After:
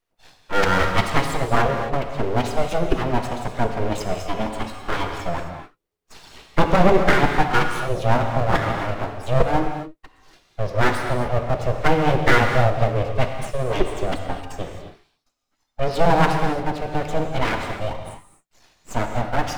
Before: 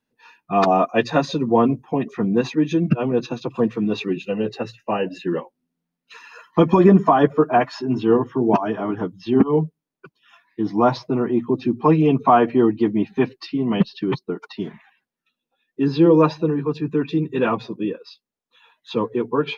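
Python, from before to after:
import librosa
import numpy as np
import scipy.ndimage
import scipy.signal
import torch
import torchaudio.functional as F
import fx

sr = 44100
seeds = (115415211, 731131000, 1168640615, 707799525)

y = np.abs(x)
y = fx.rev_gated(y, sr, seeds[0], gate_ms=290, shape='flat', drr_db=4.0)
y = y * librosa.db_to_amplitude(1.0)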